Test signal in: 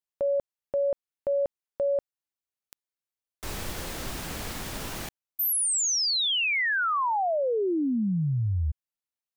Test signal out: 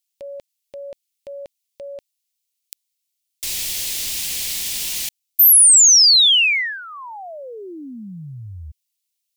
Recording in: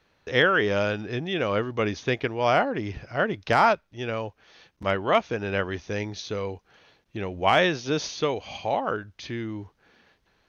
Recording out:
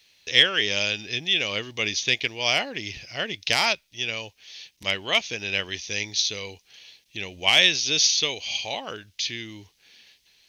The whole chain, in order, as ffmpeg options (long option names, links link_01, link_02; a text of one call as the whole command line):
ffmpeg -i in.wav -af "aexciter=amount=11.6:drive=4.3:freq=2100,volume=-8dB" out.wav